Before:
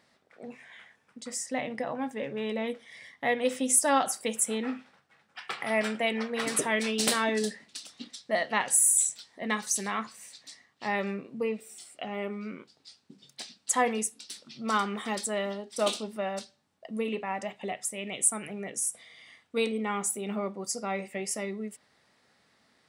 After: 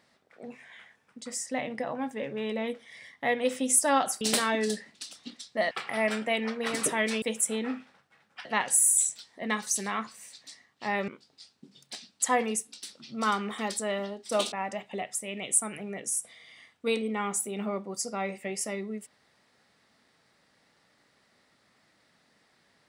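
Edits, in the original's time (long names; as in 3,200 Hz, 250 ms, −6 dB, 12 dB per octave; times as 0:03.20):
0:04.21–0:05.44: swap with 0:06.95–0:08.45
0:11.08–0:12.55: remove
0:15.99–0:17.22: remove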